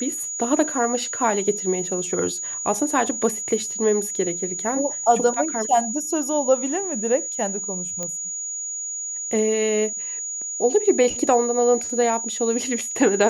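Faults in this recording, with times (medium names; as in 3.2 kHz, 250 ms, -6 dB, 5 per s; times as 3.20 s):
whine 6.8 kHz -27 dBFS
8.03 s: pop -14 dBFS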